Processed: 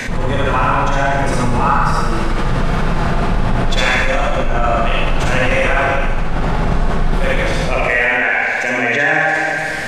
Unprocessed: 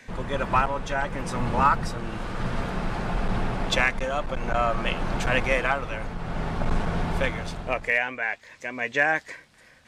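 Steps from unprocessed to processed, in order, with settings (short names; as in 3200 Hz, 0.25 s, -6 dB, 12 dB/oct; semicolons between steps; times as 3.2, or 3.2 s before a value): low shelf 60 Hz +7.5 dB; reverb RT60 1.2 s, pre-delay 45 ms, DRR -6 dB; fast leveller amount 70%; gain -2 dB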